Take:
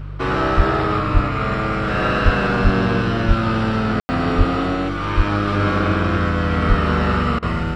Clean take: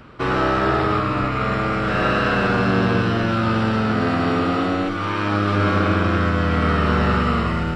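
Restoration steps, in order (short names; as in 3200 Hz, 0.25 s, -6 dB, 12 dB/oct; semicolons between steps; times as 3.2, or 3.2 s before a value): de-hum 49 Hz, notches 3; de-plosive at 0.56/1.13/2.24/2.63/3.27/4.37/5.16/6.68; room tone fill 4–4.09; interpolate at 7.39, 34 ms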